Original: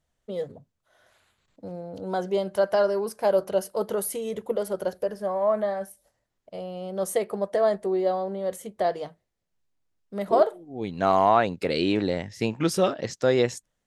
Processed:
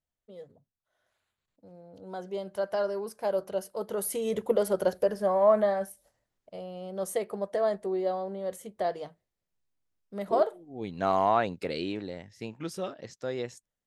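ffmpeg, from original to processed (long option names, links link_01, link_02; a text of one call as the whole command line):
ffmpeg -i in.wav -af "volume=2dB,afade=type=in:start_time=1.67:duration=1.17:silence=0.398107,afade=type=in:start_time=3.88:duration=0.46:silence=0.354813,afade=type=out:start_time=5.51:duration=1.1:silence=0.446684,afade=type=out:start_time=11.51:duration=0.52:silence=0.421697" out.wav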